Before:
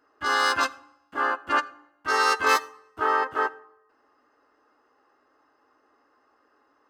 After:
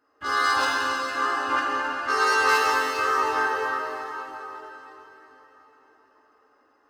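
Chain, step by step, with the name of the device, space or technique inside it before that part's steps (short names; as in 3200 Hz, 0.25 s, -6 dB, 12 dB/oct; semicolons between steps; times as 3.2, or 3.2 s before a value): cathedral (reverb RT60 4.2 s, pre-delay 6 ms, DRR -5.5 dB); gain -4.5 dB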